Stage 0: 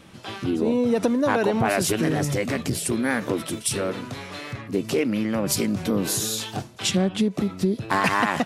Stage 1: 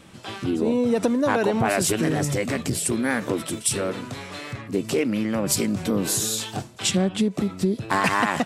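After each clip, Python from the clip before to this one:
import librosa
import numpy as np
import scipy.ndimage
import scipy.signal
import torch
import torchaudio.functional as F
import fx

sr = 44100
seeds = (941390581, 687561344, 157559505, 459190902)

y = fx.peak_eq(x, sr, hz=7900.0, db=6.0, octaves=0.27)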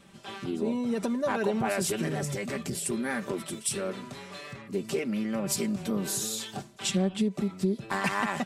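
y = x + 0.6 * np.pad(x, (int(5.1 * sr / 1000.0), 0))[:len(x)]
y = F.gain(torch.from_numpy(y), -8.5).numpy()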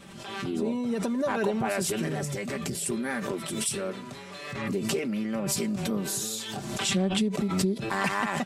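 y = fx.pre_swell(x, sr, db_per_s=41.0)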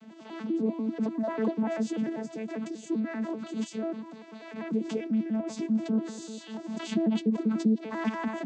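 y = fx.vocoder_arp(x, sr, chord='bare fifth', root=57, every_ms=98)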